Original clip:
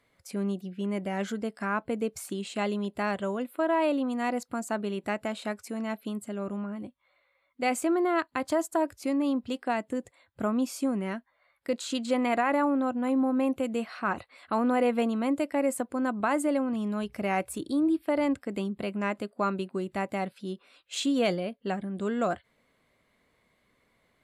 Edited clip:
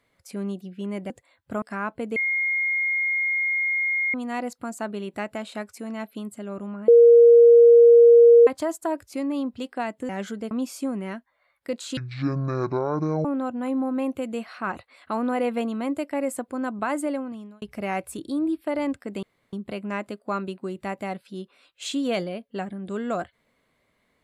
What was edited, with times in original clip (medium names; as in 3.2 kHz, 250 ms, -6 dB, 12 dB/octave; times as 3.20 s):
1.10–1.52 s: swap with 9.99–10.51 s
2.06–4.04 s: bleep 2.14 kHz -21 dBFS
6.78–8.37 s: bleep 470 Hz -8.5 dBFS
11.97–12.66 s: speed 54%
16.48–17.03 s: fade out
18.64 s: insert room tone 0.30 s